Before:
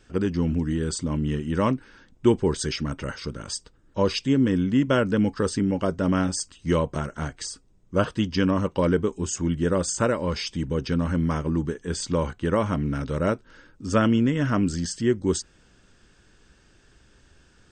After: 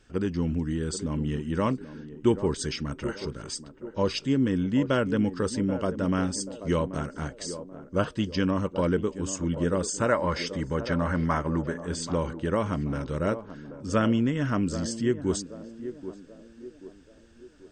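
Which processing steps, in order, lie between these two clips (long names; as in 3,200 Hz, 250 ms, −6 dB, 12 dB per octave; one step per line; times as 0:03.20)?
gain on a spectral selection 0:10.07–0:11.85, 540–2,200 Hz +8 dB
feedback echo with a band-pass in the loop 783 ms, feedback 49%, band-pass 430 Hz, level −10 dB
level −3.5 dB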